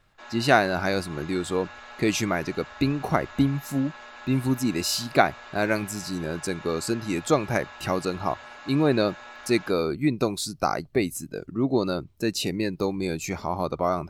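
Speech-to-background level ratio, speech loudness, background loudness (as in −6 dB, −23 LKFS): 16.5 dB, −26.5 LKFS, −43.0 LKFS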